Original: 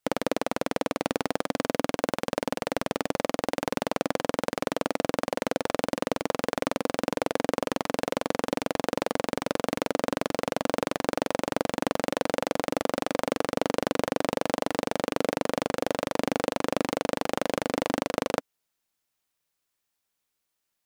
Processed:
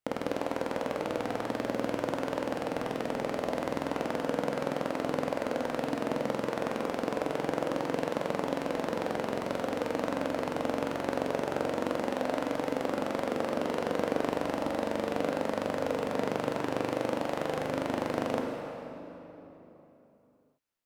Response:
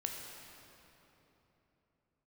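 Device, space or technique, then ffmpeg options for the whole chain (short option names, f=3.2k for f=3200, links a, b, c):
swimming-pool hall: -filter_complex "[1:a]atrim=start_sample=2205[a];[0:a][a]afir=irnorm=-1:irlink=0,highshelf=f=3.1k:g=-7,volume=-3.5dB"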